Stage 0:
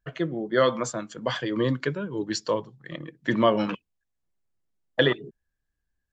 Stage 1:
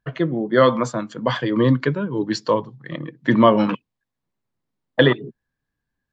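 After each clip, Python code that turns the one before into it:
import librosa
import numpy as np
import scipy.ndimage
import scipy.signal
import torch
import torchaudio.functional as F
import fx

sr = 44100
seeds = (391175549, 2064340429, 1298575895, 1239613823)

y = fx.graphic_eq(x, sr, hz=(125, 250, 500, 1000, 2000, 4000), db=(12, 11, 6, 11, 6, 7))
y = F.gain(torch.from_numpy(y), -5.0).numpy()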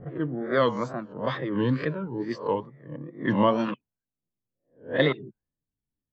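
y = fx.spec_swells(x, sr, rise_s=0.37)
y = fx.env_lowpass(y, sr, base_hz=460.0, full_db=-10.0)
y = fx.wow_flutter(y, sr, seeds[0], rate_hz=2.1, depth_cents=140.0)
y = F.gain(torch.from_numpy(y), -8.5).numpy()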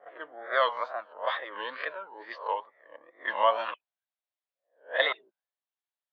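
y = scipy.signal.sosfilt(scipy.signal.ellip(3, 1.0, 80, [640.0, 3800.0], 'bandpass', fs=sr, output='sos'), x)
y = F.gain(torch.from_numpy(y), 2.0).numpy()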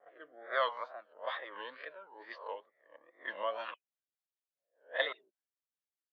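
y = fx.rotary_switch(x, sr, hz=1.2, then_hz=5.0, switch_at_s=3.25)
y = F.gain(torch.from_numpy(y), -6.0).numpy()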